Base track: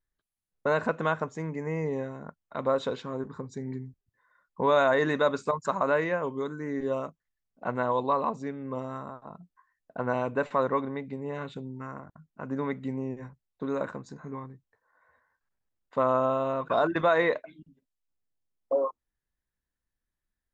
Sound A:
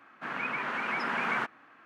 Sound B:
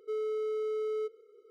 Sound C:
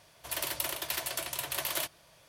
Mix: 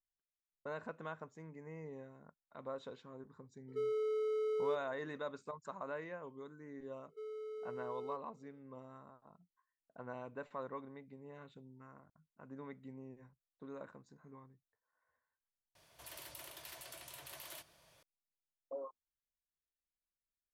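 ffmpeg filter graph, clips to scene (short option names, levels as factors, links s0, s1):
-filter_complex "[2:a]asplit=2[s0][s1];[0:a]volume=0.126[s2];[3:a]acompressor=threshold=0.00355:ratio=2:attack=2:release=25:knee=1:detection=peak[s3];[s2]asplit=2[s4][s5];[s4]atrim=end=15.754[s6];[s3]atrim=end=2.28,asetpts=PTS-STARTPTS,volume=0.422[s7];[s5]atrim=start=18.026[s8];[s0]atrim=end=1.5,asetpts=PTS-STARTPTS,volume=0.708,afade=t=in:d=0.004:c=hsin,afade=t=out:st=1.496:d=0.004:c=hsin,adelay=3680[s9];[s1]atrim=end=1.5,asetpts=PTS-STARTPTS,volume=0.237,afade=t=in:d=0.004:c=hsin,afade=t=out:st=1.496:d=0.004:c=hsin,adelay=7090[s10];[s6][s7]acrossfade=d=0.004:c1=hsin:c2=hsin[s11];[s11][s8]acrossfade=d=0.004:c1=hsin:c2=hsin[s12];[s12][s9][s10]amix=inputs=3:normalize=0"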